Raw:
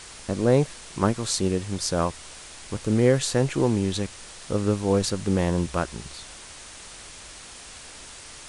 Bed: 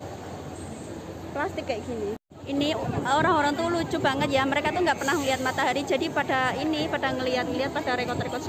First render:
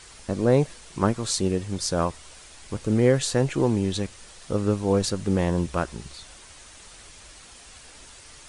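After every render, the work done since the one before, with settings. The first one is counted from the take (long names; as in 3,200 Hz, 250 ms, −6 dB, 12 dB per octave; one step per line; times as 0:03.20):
broadband denoise 6 dB, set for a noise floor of −43 dBFS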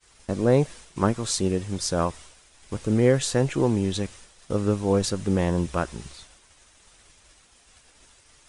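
notch filter 4,400 Hz, Q 22
downward expander −39 dBFS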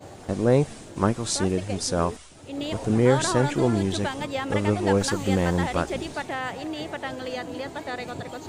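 mix in bed −6 dB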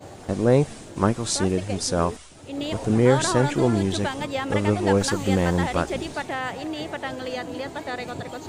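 level +1.5 dB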